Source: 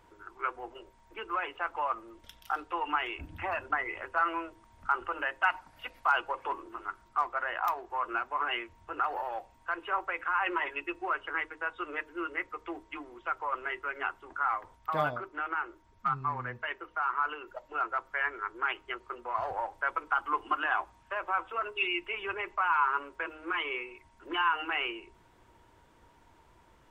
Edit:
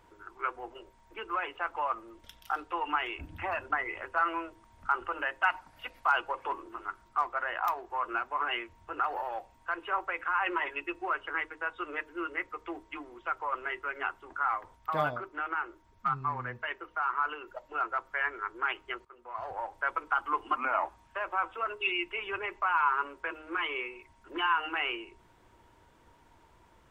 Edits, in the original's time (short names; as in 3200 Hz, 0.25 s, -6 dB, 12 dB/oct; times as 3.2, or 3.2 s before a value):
19.05–19.84 fade in, from -18 dB
20.56–20.81 speed 85%